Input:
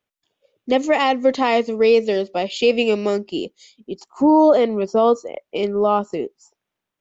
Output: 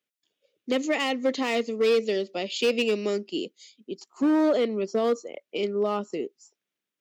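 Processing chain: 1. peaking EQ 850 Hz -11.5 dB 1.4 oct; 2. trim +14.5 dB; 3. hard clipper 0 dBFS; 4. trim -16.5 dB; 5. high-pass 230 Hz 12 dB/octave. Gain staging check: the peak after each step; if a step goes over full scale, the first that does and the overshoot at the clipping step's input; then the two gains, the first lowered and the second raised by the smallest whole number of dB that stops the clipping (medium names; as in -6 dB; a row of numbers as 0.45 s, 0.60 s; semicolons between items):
-9.0 dBFS, +5.5 dBFS, 0.0 dBFS, -16.5 dBFS, -13.5 dBFS; step 2, 5.5 dB; step 2 +8.5 dB, step 4 -10.5 dB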